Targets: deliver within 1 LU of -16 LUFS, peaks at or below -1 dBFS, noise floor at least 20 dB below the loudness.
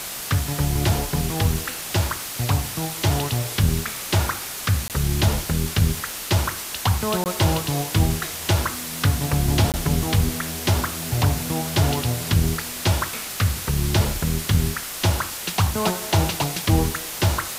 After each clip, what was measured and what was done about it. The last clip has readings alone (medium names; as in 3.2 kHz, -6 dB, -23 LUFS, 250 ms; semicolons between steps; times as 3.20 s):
dropouts 3; longest dropout 18 ms; noise floor -32 dBFS; noise floor target -43 dBFS; loudness -22.5 LUFS; peak level -6.0 dBFS; loudness target -16.0 LUFS
-> interpolate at 4.88/7.24/9.72 s, 18 ms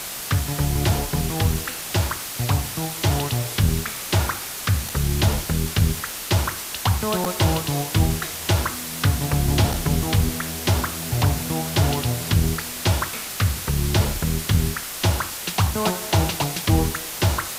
dropouts 0; noise floor -32 dBFS; noise floor target -43 dBFS
-> noise print and reduce 11 dB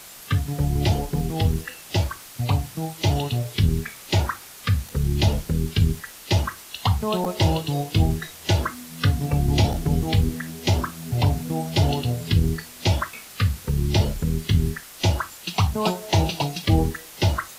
noise floor -43 dBFS; noise floor target -44 dBFS
-> noise print and reduce 6 dB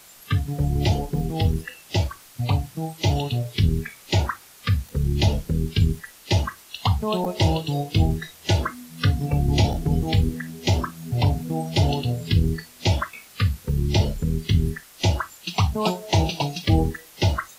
noise floor -49 dBFS; loudness -24.0 LUFS; peak level -6.5 dBFS; loudness target -16.0 LUFS
-> trim +8 dB; peak limiter -1 dBFS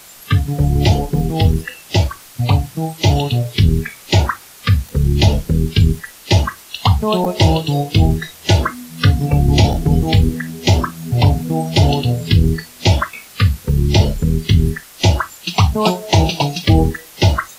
loudness -16.5 LUFS; peak level -1.0 dBFS; noise floor -41 dBFS